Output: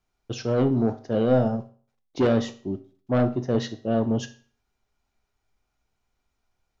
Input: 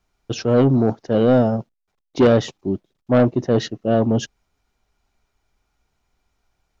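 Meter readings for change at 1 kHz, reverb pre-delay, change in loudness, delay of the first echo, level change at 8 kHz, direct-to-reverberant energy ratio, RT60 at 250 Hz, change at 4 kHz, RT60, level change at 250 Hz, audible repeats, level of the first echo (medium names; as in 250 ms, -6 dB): -6.0 dB, 8 ms, -6.0 dB, no echo, no reading, 8.0 dB, 0.45 s, -6.5 dB, 0.45 s, -6.0 dB, no echo, no echo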